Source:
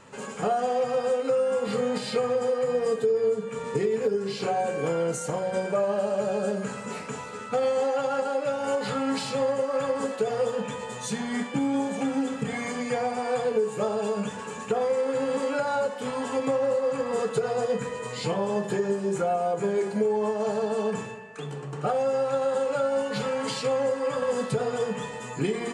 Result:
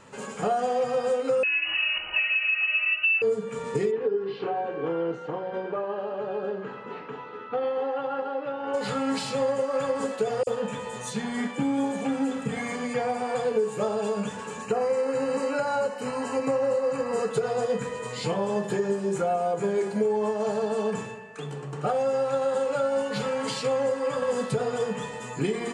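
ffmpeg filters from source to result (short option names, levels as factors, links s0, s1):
-filter_complex "[0:a]asettb=1/sr,asplit=3[s0][s1][s2];[s0]atrim=end=1.434[s3];[s1]atrim=start=1.43:end=3.22,asetpts=PTS-STARTPTS,afade=t=in:d=0.004:c=qsin,afade=t=out:st=1.786:d=0.004:c=qsin,lowpass=f=2600:t=q:w=0.5098,lowpass=f=2600:t=q:w=0.6013,lowpass=f=2600:t=q:w=0.9,lowpass=f=2600:t=q:w=2.563,afreqshift=-3100[s4];[s2]atrim=start=3.216[s5];[s3][s4]acrossfade=d=0.004:c1=hsin:c2=qsin[s6];[s6][s5]acrossfade=d=0.004:c1=qsin:c2=hsin,asplit=3[s7][s8][s9];[s7]afade=t=out:st=3.9:d=0.02[s10];[s8]highpass=190,equalizer=f=210:t=q:w=4:g=-9,equalizer=f=340:t=q:w=4:g=5,equalizer=f=610:t=q:w=4:g=-8,equalizer=f=1500:t=q:w=4:g=-3,equalizer=f=2300:t=q:w=4:g=-9,lowpass=f=3000:w=0.5412,lowpass=f=3000:w=1.3066,afade=t=in:st=3.9:d=0.02,afade=t=out:st=8.73:d=0.02[s11];[s9]afade=t=in:st=8.73:d=0.02[s12];[s10][s11][s12]amix=inputs=3:normalize=0,asettb=1/sr,asplit=3[s13][s14][s15];[s13]atrim=end=10.434[s16];[s14]atrim=start=10.43:end=13.35,asetpts=PTS-STARTPTS,afade=t=in:d=0.004:c=qsin,afade=t=out:st=2.916:d=0.004:c=qsin,acrossover=split=5700[s17][s18];[s17]adelay=40[s19];[s19][s18]amix=inputs=2:normalize=0,atrim=end_sample=128772[s20];[s15]atrim=start=13.346[s21];[s16][s20]acrossfade=d=0.004:c1=hsin:c2=qsin[s22];[s22][s21]acrossfade=d=0.004:c1=qsin:c2=hsin,asettb=1/sr,asplit=3[s23][s24][s25];[s23]atrim=end=14.624[s26];[s24]atrim=start=14.62:end=17.31,asetpts=PTS-STARTPTS,afade=t=in:d=0.004:c=qsin,afade=t=out:st=2.686:d=0.004:c=qsin,asuperstop=centerf=3400:order=20:qfactor=5.5[s27];[s25]atrim=start=17.306[s28];[s26][s27]acrossfade=d=0.004:c1=hsin:c2=qsin[s29];[s29][s28]acrossfade=d=0.004:c1=qsin:c2=hsin"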